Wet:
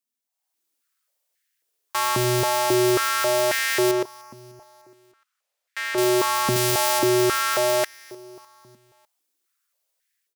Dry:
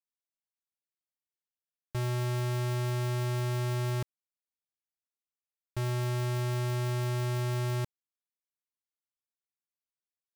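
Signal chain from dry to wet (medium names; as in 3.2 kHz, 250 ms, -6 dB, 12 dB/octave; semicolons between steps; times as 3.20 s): 3.91–5.98 s: overdrive pedal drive 7 dB, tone 2.8 kHz, clips at -30 dBFS; treble shelf 3.6 kHz +9 dB; level rider gain up to 10.5 dB; 6.56–6.99 s: tilt EQ +1.5 dB/octave; feedback delay 301 ms, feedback 55%, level -22 dB; step-sequenced high-pass 3.7 Hz 230–1800 Hz; trim +1 dB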